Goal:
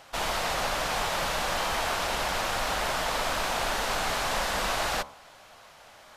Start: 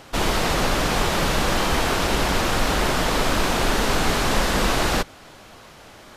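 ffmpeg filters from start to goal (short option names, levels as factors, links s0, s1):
-af "lowshelf=f=480:t=q:w=1.5:g=-8,bandreject=f=70.49:t=h:w=4,bandreject=f=140.98:t=h:w=4,bandreject=f=211.47:t=h:w=4,bandreject=f=281.96:t=h:w=4,bandreject=f=352.45:t=h:w=4,bandreject=f=422.94:t=h:w=4,bandreject=f=493.43:t=h:w=4,bandreject=f=563.92:t=h:w=4,bandreject=f=634.41:t=h:w=4,bandreject=f=704.9:t=h:w=4,bandreject=f=775.39:t=h:w=4,bandreject=f=845.88:t=h:w=4,bandreject=f=916.37:t=h:w=4,bandreject=f=986.86:t=h:w=4,bandreject=f=1057.35:t=h:w=4,bandreject=f=1127.84:t=h:w=4,bandreject=f=1198.33:t=h:w=4,bandreject=f=1268.82:t=h:w=4,bandreject=f=1339.31:t=h:w=4,volume=0.501"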